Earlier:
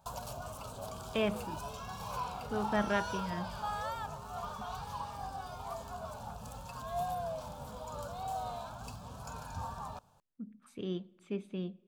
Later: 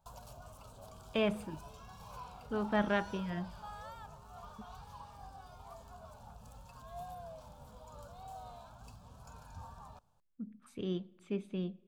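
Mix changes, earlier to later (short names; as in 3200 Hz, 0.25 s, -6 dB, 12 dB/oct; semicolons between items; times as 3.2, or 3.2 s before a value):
background -10.5 dB; master: add low shelf 61 Hz +11 dB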